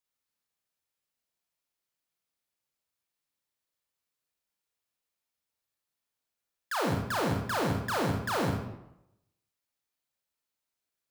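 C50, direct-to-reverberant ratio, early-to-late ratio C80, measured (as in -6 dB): 2.0 dB, -1.0 dB, 5.5 dB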